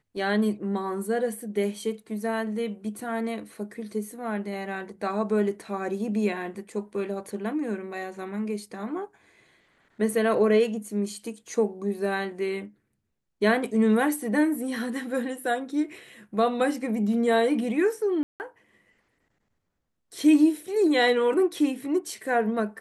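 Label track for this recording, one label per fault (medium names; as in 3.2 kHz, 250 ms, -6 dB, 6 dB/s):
18.230000	18.400000	dropout 169 ms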